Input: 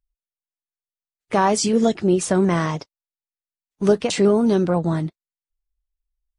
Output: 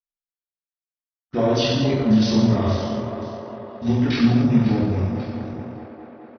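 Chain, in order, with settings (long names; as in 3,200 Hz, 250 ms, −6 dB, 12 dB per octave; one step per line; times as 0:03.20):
feedback delay that plays each chunk backwards 275 ms, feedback 71%, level −12 dB
noise gate −31 dBFS, range −26 dB
delay with a band-pass on its return 210 ms, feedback 81%, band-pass 1,300 Hz, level −7.5 dB
reverb whose tail is shaped and stops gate 320 ms falling, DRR −7.5 dB
pitch shifter −9 semitones
level −8 dB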